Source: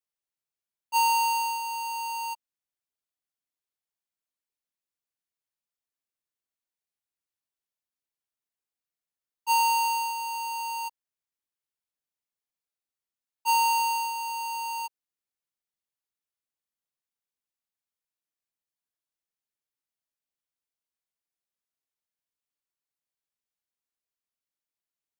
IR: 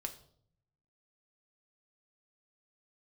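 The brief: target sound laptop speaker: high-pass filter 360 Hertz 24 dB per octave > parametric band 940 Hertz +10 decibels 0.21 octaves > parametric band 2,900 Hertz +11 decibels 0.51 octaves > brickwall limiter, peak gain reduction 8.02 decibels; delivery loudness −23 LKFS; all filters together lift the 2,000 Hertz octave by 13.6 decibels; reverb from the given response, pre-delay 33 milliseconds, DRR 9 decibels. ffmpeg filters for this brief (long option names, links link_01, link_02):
-filter_complex "[0:a]equalizer=frequency=2000:width_type=o:gain=6.5,asplit=2[link_01][link_02];[1:a]atrim=start_sample=2205,adelay=33[link_03];[link_02][link_03]afir=irnorm=-1:irlink=0,volume=-7.5dB[link_04];[link_01][link_04]amix=inputs=2:normalize=0,highpass=frequency=360:width=0.5412,highpass=frequency=360:width=1.3066,equalizer=frequency=940:width_type=o:width=0.21:gain=10,equalizer=frequency=2900:width_type=o:width=0.51:gain=11,volume=-2.5dB,alimiter=limit=-15.5dB:level=0:latency=1"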